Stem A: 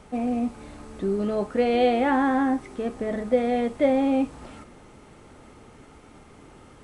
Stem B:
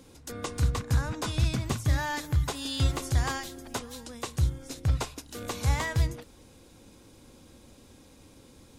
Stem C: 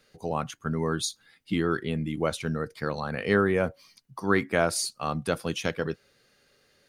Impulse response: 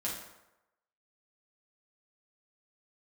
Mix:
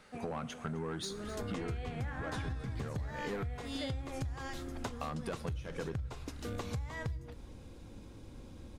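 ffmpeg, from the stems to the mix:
-filter_complex "[0:a]equalizer=f=1.6k:t=o:w=1.4:g=13.5,highshelf=f=4.1k:g=11.5,volume=-19dB,asplit=2[a][b];[b]volume=-9dB[c];[1:a]lowshelf=f=130:g=10.5,adelay=1100,volume=-1dB,asplit=2[d][e];[e]volume=-23.5dB[f];[2:a]asoftclip=type=tanh:threshold=-24.5dB,acompressor=threshold=-38dB:ratio=1.5,volume=2.5dB,asplit=3[g][h][i];[g]atrim=end=3.43,asetpts=PTS-STARTPTS,afade=t=out:st=3.426:d=0.004:c=hsin[j];[h]atrim=start=3.43:end=5.01,asetpts=PTS-STARTPTS,volume=0[k];[i]atrim=start=5.01,asetpts=PTS-STARTPTS,afade=t=in:d=0.004:c=hsin[l];[j][k][l]concat=n=3:v=0:a=1,asplit=3[m][n][o];[n]volume=-20.5dB[p];[o]volume=-22dB[q];[d][m]amix=inputs=2:normalize=0,lowpass=f=3k:p=1,acompressor=threshold=-24dB:ratio=6,volume=0dB[r];[3:a]atrim=start_sample=2205[s];[f][p]amix=inputs=2:normalize=0[t];[t][s]afir=irnorm=-1:irlink=0[u];[c][q]amix=inputs=2:normalize=0,aecho=0:1:259:1[v];[a][r][u][v]amix=inputs=4:normalize=0,acompressor=threshold=-35dB:ratio=10"

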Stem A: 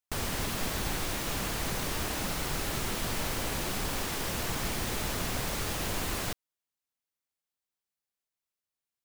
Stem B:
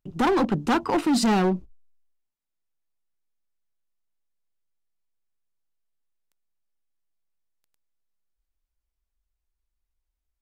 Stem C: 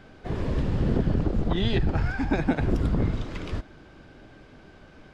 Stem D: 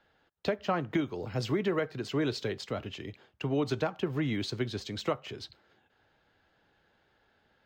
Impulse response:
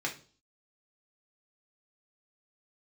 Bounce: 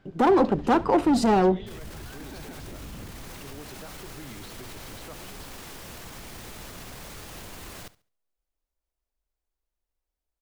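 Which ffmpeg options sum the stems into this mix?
-filter_complex "[0:a]adelay=1550,volume=-14.5dB,asplit=2[a][b];[b]volume=-13dB[c];[1:a]equalizer=f=540:t=o:w=2.2:g=11.5,volume=-6dB,asplit=2[d][e];[e]volume=-20.5dB[f];[2:a]volume=-18.5dB[g];[3:a]volume=-17dB[h];[a][g][h]amix=inputs=3:normalize=0,acontrast=80,alimiter=level_in=8dB:limit=-24dB:level=0:latency=1:release=18,volume=-8dB,volume=0dB[i];[c][f]amix=inputs=2:normalize=0,aecho=0:1:70|140|210|280:1|0.25|0.0625|0.0156[j];[d][i][j]amix=inputs=3:normalize=0"

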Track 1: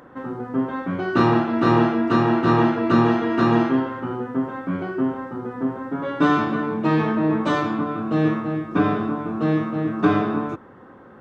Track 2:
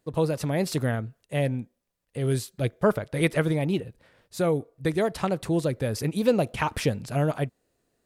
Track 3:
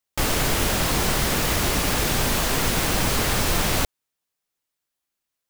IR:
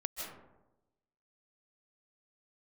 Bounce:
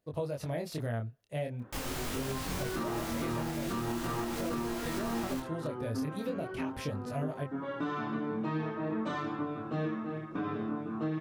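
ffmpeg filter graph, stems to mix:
-filter_complex "[0:a]adelay=1600,volume=-7dB[a];[1:a]equalizer=f=100:t=o:w=0.33:g=6,equalizer=f=630:t=o:w=0.33:g=6,equalizer=f=8k:t=o:w=0.33:g=-6,acompressor=threshold=-20dB:ratio=6,volume=-5.5dB[b];[2:a]acontrast=69,adelay=1550,volume=-17dB[c];[a][b][c]amix=inputs=3:normalize=0,flanger=delay=20:depth=6.9:speed=0.42,alimiter=level_in=1dB:limit=-24dB:level=0:latency=1:release=292,volume=-1dB"

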